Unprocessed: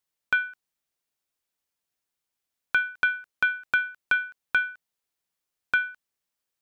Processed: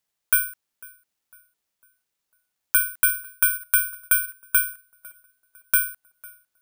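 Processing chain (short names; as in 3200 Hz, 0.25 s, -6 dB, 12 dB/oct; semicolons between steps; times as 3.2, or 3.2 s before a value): on a send: tape echo 0.501 s, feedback 53%, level -20.5 dB, low-pass 1600 Hz; on the sum: careless resampling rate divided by 4×, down none, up zero stuff; gain -2 dB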